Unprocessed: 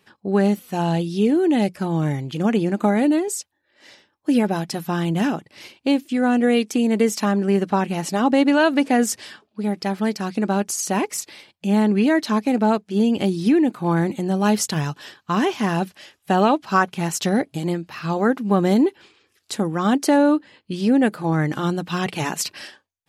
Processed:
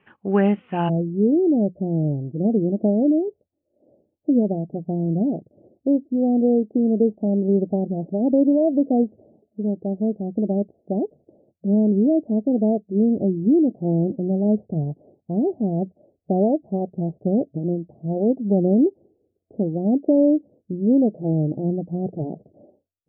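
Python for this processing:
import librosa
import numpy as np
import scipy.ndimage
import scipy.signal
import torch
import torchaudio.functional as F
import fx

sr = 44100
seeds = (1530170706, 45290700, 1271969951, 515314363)

y = fx.steep_lowpass(x, sr, hz=fx.steps((0.0, 3000.0), (0.88, 690.0)), slope=72)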